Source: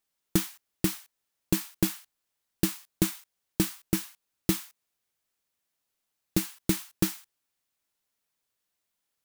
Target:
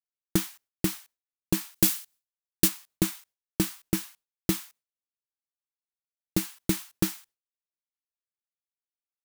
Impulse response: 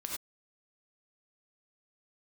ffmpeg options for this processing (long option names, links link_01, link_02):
-filter_complex "[0:a]asplit=3[link_01][link_02][link_03];[link_01]afade=type=out:start_time=1.74:duration=0.02[link_04];[link_02]highshelf=frequency=3000:gain=10,afade=type=in:start_time=1.74:duration=0.02,afade=type=out:start_time=2.67:duration=0.02[link_05];[link_03]afade=type=in:start_time=2.67:duration=0.02[link_06];[link_04][link_05][link_06]amix=inputs=3:normalize=0,agate=range=-33dB:threshold=-50dB:ratio=3:detection=peak"